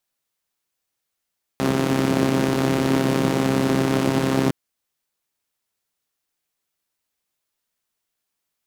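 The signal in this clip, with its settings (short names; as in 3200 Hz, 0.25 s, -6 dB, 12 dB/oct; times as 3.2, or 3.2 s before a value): four-cylinder engine model, steady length 2.91 s, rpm 4000, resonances 190/280 Hz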